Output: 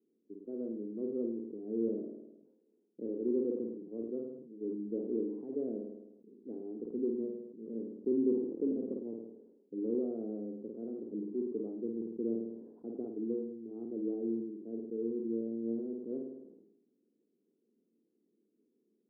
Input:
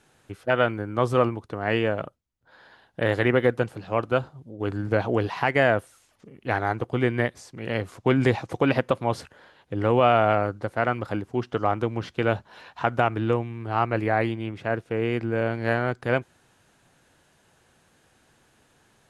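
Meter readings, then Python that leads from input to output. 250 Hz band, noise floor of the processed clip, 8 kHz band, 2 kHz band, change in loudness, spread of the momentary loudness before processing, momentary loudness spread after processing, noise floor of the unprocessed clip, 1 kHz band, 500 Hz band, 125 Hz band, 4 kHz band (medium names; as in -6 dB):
-6.5 dB, -78 dBFS, no reading, under -40 dB, -12.5 dB, 9 LU, 12 LU, -63 dBFS, under -35 dB, -12.5 dB, -27.5 dB, under -40 dB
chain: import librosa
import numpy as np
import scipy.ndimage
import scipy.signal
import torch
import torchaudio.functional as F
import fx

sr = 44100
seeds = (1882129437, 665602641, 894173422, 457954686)

p1 = scipy.signal.sosfilt(scipy.signal.cheby1(3, 1.0, [210.0, 430.0], 'bandpass', fs=sr, output='sos'), x)
p2 = p1 + fx.room_flutter(p1, sr, wall_m=9.0, rt60_s=0.54, dry=0)
p3 = fx.sustainer(p2, sr, db_per_s=56.0)
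y = p3 * 10.0 ** (-8.5 / 20.0)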